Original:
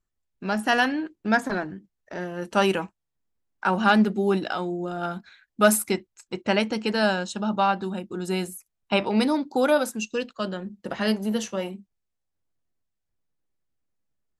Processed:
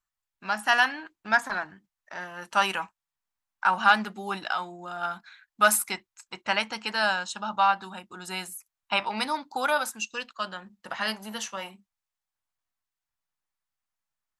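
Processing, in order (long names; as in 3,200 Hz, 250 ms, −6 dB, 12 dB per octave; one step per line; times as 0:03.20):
low shelf with overshoot 640 Hz −13 dB, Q 1.5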